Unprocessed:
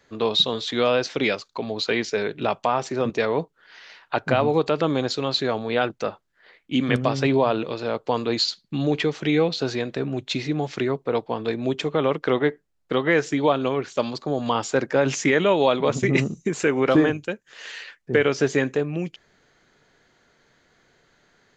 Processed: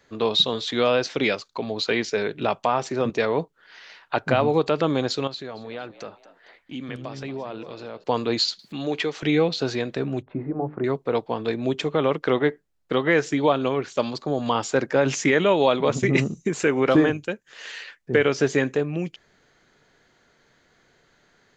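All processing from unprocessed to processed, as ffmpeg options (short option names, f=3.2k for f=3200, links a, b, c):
-filter_complex "[0:a]asettb=1/sr,asplit=3[a][b][c];[a]atrim=end=5.274[d];[b]atrim=start=5.27:end=8.04,asetpts=PTS-STARTPTS,afade=t=in:d=0.004:c=qsin,afade=t=out:st=2.766:d=0.004:c=qsin,acompressor=threshold=-40dB:ratio=2:attack=3.2:release=140:knee=1:detection=peak,asplit=4[e][f][g][h];[f]adelay=230,afreqshift=76,volume=-15.5dB[i];[g]adelay=460,afreqshift=152,volume=-23.9dB[j];[h]adelay=690,afreqshift=228,volume=-32.3dB[k];[e][i][j][k]amix=inputs=4:normalize=0,atrim=end_sample=122157[l];[c]atrim=start=8.036[m];[d][l]acrossfade=d=0.004:c1=hsin:c2=qsin[n];[n][m]acrossfade=d=0.004:c1=qsin:c2=hsin,asettb=1/sr,asplit=3[o][p][q];[o]atrim=end=8.594[r];[p]atrim=start=8.59:end=9.23,asetpts=PTS-STARTPTS,afade=t=in:d=0.004:c=qsin,afade=t=out:st=0.636:d=0.004:c=qsin,highpass=f=450:p=1,acompressor=mode=upward:threshold=-32dB:ratio=2.5:attack=3.2:release=140:knee=2.83:detection=peak[s];[q]atrim=start=9.226[t];[r][s]acrossfade=d=0.004:c1=hsin:c2=qsin[u];[u][t]acrossfade=d=0.004:c1=qsin:c2=hsin,asettb=1/sr,asplit=3[v][w][x];[v]atrim=end=10.224[y];[w]atrim=start=10.22:end=10.84,asetpts=PTS-STARTPTS,afade=t=in:d=0.004:c=qsin,afade=t=out:st=0.616:d=0.004:c=qsin,lowpass=f=1.2k:w=0.5412,lowpass=f=1.2k:w=1.3066,bandreject=f=50:t=h:w=6,bandreject=f=100:t=h:w=6,bandreject=f=150:t=h:w=6,bandreject=f=200:t=h:w=6,bandreject=f=250:t=h:w=6,bandreject=f=300:t=h:w=6,bandreject=f=350:t=h:w=6,bandreject=f=400:t=h:w=6,bandreject=f=450:t=h:w=6[z];[x]atrim=start=10.836[aa];[y][z]acrossfade=d=0.004:c1=hsin:c2=qsin[ab];[ab][aa]acrossfade=d=0.004:c1=qsin:c2=hsin"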